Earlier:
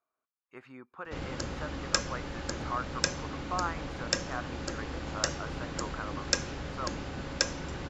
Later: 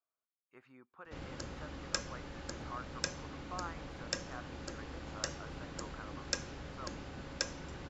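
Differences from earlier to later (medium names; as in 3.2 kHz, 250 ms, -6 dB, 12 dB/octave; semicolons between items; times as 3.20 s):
speech -10.5 dB; background -8.0 dB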